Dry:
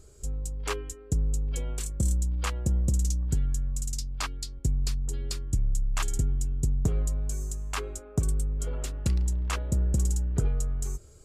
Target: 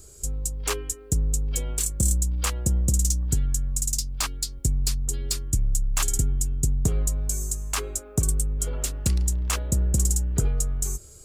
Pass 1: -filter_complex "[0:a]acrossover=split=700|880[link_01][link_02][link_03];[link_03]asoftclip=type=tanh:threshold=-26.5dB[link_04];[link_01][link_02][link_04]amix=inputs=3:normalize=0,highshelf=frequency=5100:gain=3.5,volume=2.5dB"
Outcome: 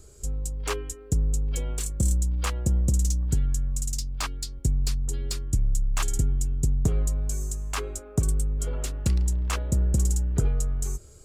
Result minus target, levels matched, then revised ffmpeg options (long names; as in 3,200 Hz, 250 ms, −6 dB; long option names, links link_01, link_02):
8,000 Hz band −5.5 dB
-filter_complex "[0:a]acrossover=split=700|880[link_01][link_02][link_03];[link_03]asoftclip=type=tanh:threshold=-26.5dB[link_04];[link_01][link_02][link_04]amix=inputs=3:normalize=0,highshelf=frequency=5100:gain=14,volume=2.5dB"